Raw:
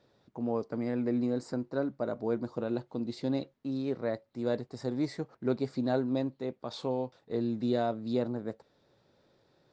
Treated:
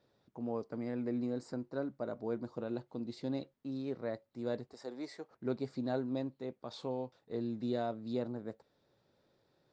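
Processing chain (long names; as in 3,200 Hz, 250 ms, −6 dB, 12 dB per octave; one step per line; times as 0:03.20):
0:04.73–0:05.31: high-pass filter 390 Hz 12 dB per octave
level −6 dB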